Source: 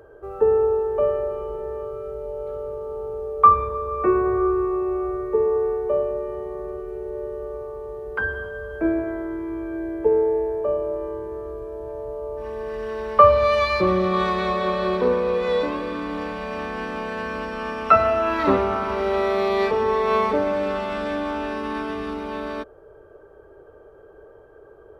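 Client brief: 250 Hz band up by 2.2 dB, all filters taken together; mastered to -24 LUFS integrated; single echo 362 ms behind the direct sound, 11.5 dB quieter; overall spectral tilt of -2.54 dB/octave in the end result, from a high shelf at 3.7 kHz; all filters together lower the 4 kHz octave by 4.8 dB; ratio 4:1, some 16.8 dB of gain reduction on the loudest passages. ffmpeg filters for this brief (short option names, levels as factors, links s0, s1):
-af "equalizer=f=250:t=o:g=3.5,highshelf=f=3700:g=-3.5,equalizer=f=4000:t=o:g=-4,acompressor=threshold=0.0355:ratio=4,aecho=1:1:362:0.266,volume=2.37"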